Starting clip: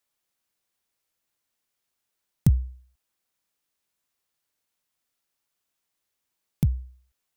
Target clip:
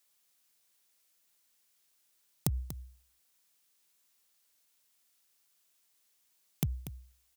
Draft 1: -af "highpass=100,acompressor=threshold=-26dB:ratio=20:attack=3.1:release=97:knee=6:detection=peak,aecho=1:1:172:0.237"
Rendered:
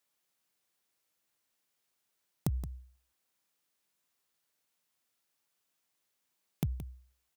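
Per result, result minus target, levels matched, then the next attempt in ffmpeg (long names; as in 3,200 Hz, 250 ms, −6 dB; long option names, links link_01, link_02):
4,000 Hz band −6.0 dB; echo 67 ms early
-af "highpass=100,acompressor=threshold=-26dB:ratio=20:attack=3.1:release=97:knee=6:detection=peak,highshelf=frequency=2500:gain=9.5,aecho=1:1:172:0.237"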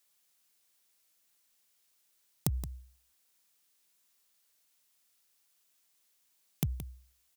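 echo 67 ms early
-af "highpass=100,acompressor=threshold=-26dB:ratio=20:attack=3.1:release=97:knee=6:detection=peak,highshelf=frequency=2500:gain=9.5,aecho=1:1:239:0.237"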